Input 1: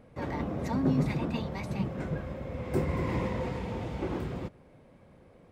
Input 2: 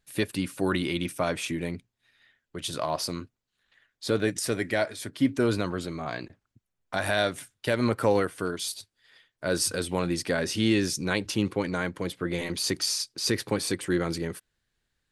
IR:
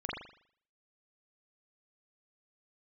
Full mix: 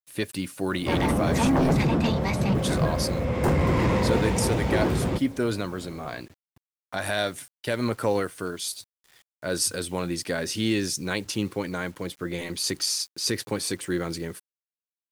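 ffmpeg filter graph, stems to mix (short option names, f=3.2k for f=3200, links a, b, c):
-filter_complex "[0:a]aeval=exprs='0.178*sin(PI/2*3.16*val(0)/0.178)':c=same,adelay=700,volume=-2.5dB[a];[1:a]acrusher=bits=8:mix=0:aa=0.000001,volume=-1.5dB[b];[a][b]amix=inputs=2:normalize=0,adynamicequalizer=threshold=0.0112:dfrequency=4100:dqfactor=0.7:tfrequency=4100:tqfactor=0.7:attack=5:release=100:ratio=0.375:range=2:mode=boostabove:tftype=highshelf"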